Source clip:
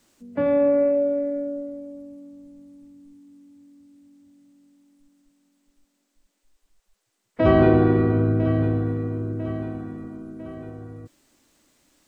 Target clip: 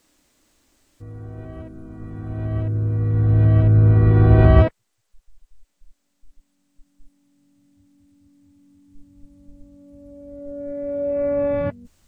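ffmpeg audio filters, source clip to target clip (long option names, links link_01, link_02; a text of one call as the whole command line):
ffmpeg -i in.wav -af "areverse,asubboost=boost=10.5:cutoff=91" out.wav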